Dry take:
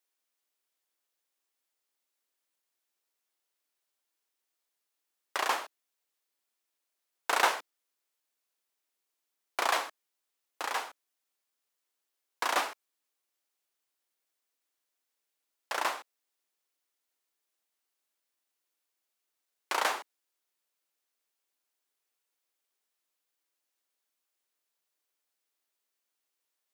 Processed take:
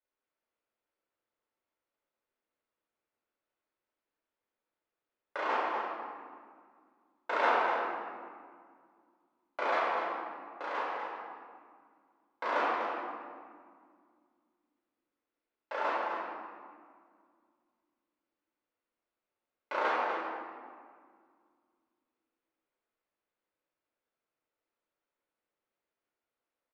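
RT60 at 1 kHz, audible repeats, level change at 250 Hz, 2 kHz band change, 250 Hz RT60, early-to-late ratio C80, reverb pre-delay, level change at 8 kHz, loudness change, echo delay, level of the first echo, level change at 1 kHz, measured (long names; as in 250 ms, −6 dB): 1.9 s, 1, +6.0 dB, −1.0 dB, 3.0 s, 0.0 dB, 3 ms, below −20 dB, −2.0 dB, 247 ms, −7.5 dB, +2.0 dB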